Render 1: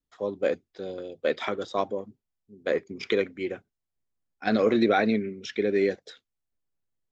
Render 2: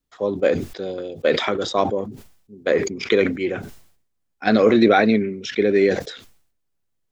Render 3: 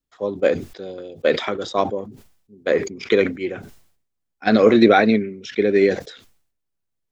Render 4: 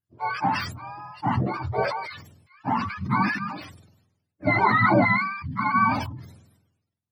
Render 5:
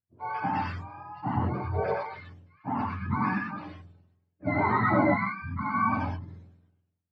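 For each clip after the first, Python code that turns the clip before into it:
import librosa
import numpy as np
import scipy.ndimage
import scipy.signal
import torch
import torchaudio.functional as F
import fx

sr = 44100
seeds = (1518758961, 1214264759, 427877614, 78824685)

y1 = fx.sustainer(x, sr, db_per_s=85.0)
y1 = y1 * librosa.db_to_amplitude(7.0)
y2 = fx.upward_expand(y1, sr, threshold_db=-26.0, expansion=1.5)
y2 = y2 * librosa.db_to_amplitude(3.0)
y3 = fx.octave_mirror(y2, sr, pivot_hz=670.0)
y3 = fx.sustainer(y3, sr, db_per_s=62.0)
y3 = y3 * librosa.db_to_amplitude(-3.5)
y4 = fx.spacing_loss(y3, sr, db_at_10k=32)
y4 = fx.rev_gated(y4, sr, seeds[0], gate_ms=140, shape='rising', drr_db=-1.0)
y4 = y4 * librosa.db_to_amplitude(-5.0)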